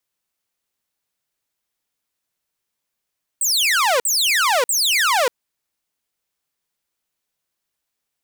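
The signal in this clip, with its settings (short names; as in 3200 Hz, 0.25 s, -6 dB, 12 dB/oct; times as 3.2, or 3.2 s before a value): burst of laser zaps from 8700 Hz, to 460 Hz, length 0.59 s saw, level -12 dB, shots 3, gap 0.05 s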